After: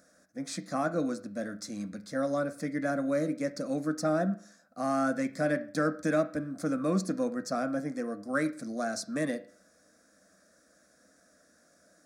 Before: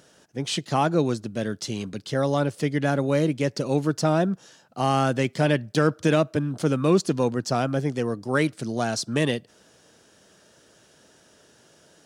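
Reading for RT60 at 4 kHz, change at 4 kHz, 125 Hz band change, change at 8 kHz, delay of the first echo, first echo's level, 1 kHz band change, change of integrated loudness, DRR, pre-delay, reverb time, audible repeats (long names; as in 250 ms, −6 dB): 0.45 s, −13.5 dB, −13.5 dB, −7.0 dB, no echo audible, no echo audible, −8.0 dB, −7.5 dB, 9.5 dB, 10 ms, 0.45 s, no echo audible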